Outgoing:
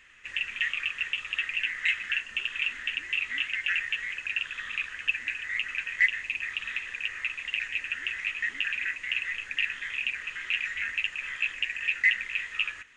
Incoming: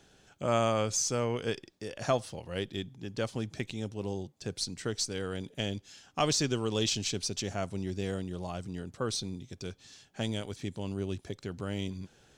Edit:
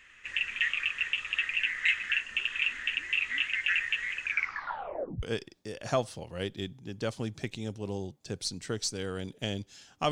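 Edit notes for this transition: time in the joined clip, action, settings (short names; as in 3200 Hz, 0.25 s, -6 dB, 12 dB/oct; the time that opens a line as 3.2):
outgoing
4.24 tape stop 0.99 s
5.23 switch to incoming from 1.39 s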